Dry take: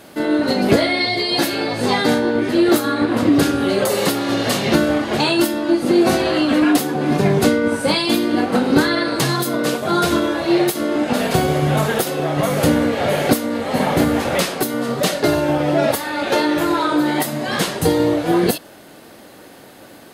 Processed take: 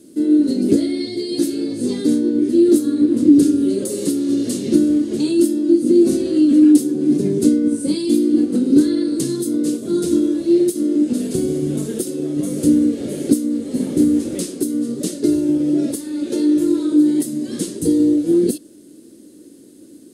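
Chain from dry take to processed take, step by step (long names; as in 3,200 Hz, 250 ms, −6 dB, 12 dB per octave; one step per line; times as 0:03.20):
drawn EQ curve 140 Hz 0 dB, 310 Hz +15 dB, 520 Hz −2 dB, 760 Hz −19 dB, 2,400 Hz −11 dB, 9,200 Hz +11 dB, 14,000 Hz −5 dB
level −9 dB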